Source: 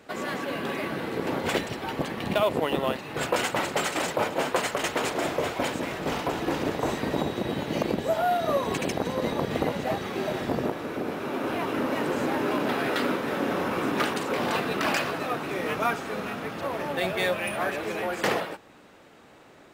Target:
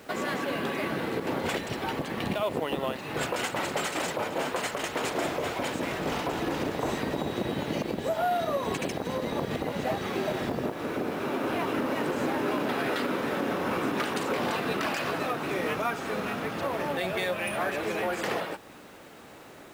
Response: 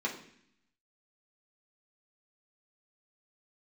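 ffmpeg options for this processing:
-filter_complex "[0:a]asplit=2[a][b];[b]acompressor=threshold=-36dB:ratio=6,volume=2dB[c];[a][c]amix=inputs=2:normalize=0,alimiter=limit=-16dB:level=0:latency=1:release=128,acrusher=bits=8:mix=0:aa=0.000001,volume=-3dB"

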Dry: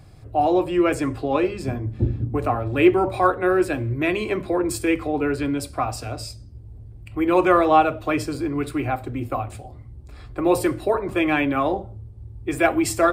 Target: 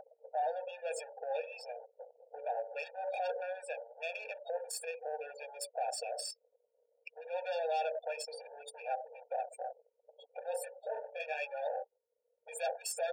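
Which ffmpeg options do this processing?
-filter_complex "[0:a]acompressor=mode=upward:threshold=-24dB:ratio=2.5,asplit=3[a][b][c];[a]afade=t=out:st=10.54:d=0.02[d];[b]flanger=delay=18:depth=4.6:speed=1.3,afade=t=in:st=10.54:d=0.02,afade=t=out:st=12.54:d=0.02[e];[c]afade=t=in:st=12.54:d=0.02[f];[d][e][f]amix=inputs=3:normalize=0,asoftclip=type=hard:threshold=-15.5dB,equalizer=f=1.3k:w=1.1:g=-14.5,afftfilt=real='re*gte(hypot(re,im),0.0178)':imag='im*gte(hypot(re,im),0.0178)':win_size=1024:overlap=0.75,aeval=exprs='val(0)+0.00251*(sin(2*PI*60*n/s)+sin(2*PI*2*60*n/s)/2+sin(2*PI*3*60*n/s)/3+sin(2*PI*4*60*n/s)/4+sin(2*PI*5*60*n/s)/5)':c=same,equalizer=f=150:w=2.6:g=-10,acompressor=threshold=-29dB:ratio=16,alimiter=level_in=6dB:limit=-24dB:level=0:latency=1:release=80,volume=-6dB,asoftclip=type=tanh:threshold=-32dB,afftfilt=real='re*eq(mod(floor(b*sr/1024/470),2),1)':imag='im*eq(mod(floor(b*sr/1024/470),2),1)':win_size=1024:overlap=0.75,volume=7dB"

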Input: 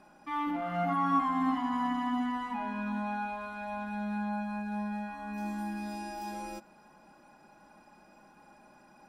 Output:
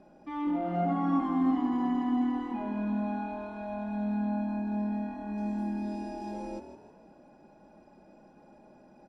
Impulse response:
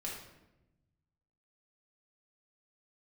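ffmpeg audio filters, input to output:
-filter_complex "[0:a]lowpass=6.7k,lowshelf=f=780:t=q:w=1.5:g=9.5,asplit=2[a][b];[b]asplit=4[c][d][e][f];[c]adelay=157,afreqshift=40,volume=-10.5dB[g];[d]adelay=314,afreqshift=80,volume=-18.5dB[h];[e]adelay=471,afreqshift=120,volume=-26.4dB[i];[f]adelay=628,afreqshift=160,volume=-34.4dB[j];[g][h][i][j]amix=inputs=4:normalize=0[k];[a][k]amix=inputs=2:normalize=0,volume=-6dB"

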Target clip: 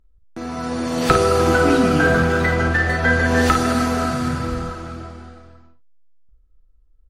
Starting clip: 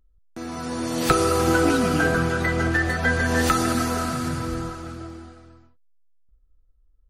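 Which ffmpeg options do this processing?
-filter_complex "[0:a]asettb=1/sr,asplit=3[a][b][c];[a]atrim=end=2.034[d];[b]atrim=start=2.03:end=2.55,asetpts=PTS-STARTPTS,afade=t=in:d=0.004:c=qsin,afade=t=out:st=0.516:d=0.004:c=qsin,aeval=exprs='val(0)+0.5*0.0224*sgn(val(0))':c=same[e];[c]atrim=start=2.546[f];[d][e]acrossfade=d=0.004:c1=hsin:c2=qsin[g];[g][f]acrossfade=d=0.004:c1=qsin:c2=hsin,lowpass=f=4k:p=1,aecho=1:1:38|53:0.282|0.398,volume=4dB"

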